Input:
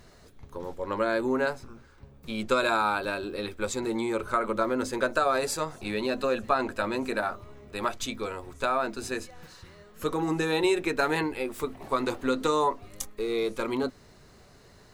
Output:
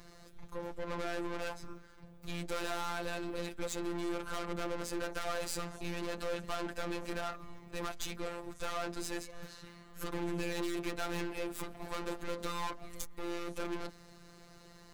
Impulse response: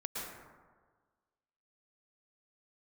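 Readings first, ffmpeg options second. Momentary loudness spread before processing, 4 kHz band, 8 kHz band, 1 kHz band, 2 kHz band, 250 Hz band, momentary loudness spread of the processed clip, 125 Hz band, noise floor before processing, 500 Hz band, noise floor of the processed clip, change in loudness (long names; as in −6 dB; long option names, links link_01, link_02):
11 LU, −7.5 dB, −6.0 dB, −12.0 dB, −11.0 dB, −9.5 dB, 14 LU, −5.5 dB, −55 dBFS, −11.5 dB, −56 dBFS, −11.0 dB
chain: -af "aeval=exprs='(tanh(70.8*val(0)+0.5)-tanh(0.5))/70.8':channel_layout=same,afftfilt=real='hypot(re,im)*cos(PI*b)':imag='0':win_size=1024:overlap=0.75,volume=4dB"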